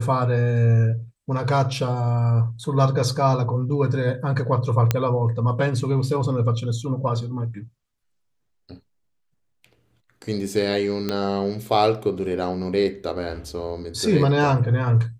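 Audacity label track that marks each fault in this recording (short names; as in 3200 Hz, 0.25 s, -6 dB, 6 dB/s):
4.910000	4.910000	pop -5 dBFS
11.090000	11.090000	pop -11 dBFS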